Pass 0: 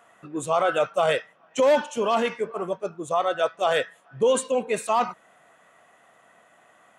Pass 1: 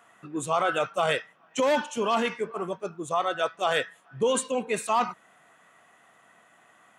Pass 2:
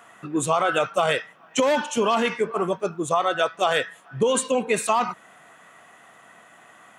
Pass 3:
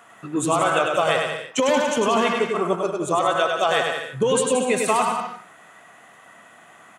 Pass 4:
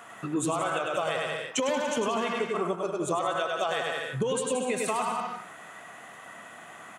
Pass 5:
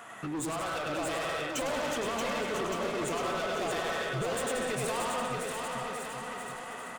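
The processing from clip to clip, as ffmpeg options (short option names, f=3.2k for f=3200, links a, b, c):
-af "highpass=69,equalizer=f=570:t=o:w=0.78:g=-6"
-af "acompressor=threshold=-25dB:ratio=6,volume=8dB"
-af "aecho=1:1:100|180|244|295.2|336.2:0.631|0.398|0.251|0.158|0.1"
-af "alimiter=limit=-12.5dB:level=0:latency=1:release=388,acompressor=threshold=-34dB:ratio=2,volume=2.5dB"
-af "asoftclip=type=hard:threshold=-32dB,aecho=1:1:630|1166|1621|2008|2336:0.631|0.398|0.251|0.158|0.1"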